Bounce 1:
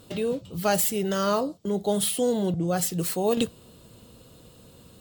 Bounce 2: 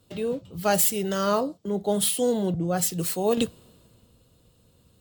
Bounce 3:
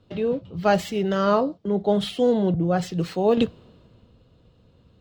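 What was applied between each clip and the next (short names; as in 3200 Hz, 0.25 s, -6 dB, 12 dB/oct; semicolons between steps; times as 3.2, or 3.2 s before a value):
three-band expander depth 40%
air absorption 220 m; gain +4.5 dB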